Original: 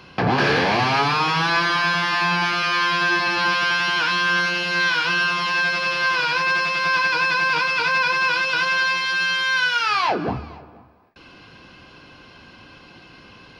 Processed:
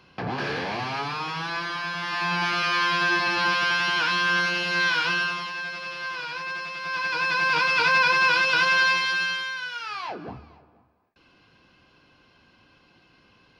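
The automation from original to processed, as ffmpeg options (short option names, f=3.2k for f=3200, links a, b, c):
-af "volume=9dB,afade=t=in:st=1.94:d=0.63:silence=0.421697,afade=t=out:st=5.06:d=0.47:silence=0.354813,afade=t=in:st=6.83:d=0.99:silence=0.251189,afade=t=out:st=8.89:d=0.67:silence=0.223872"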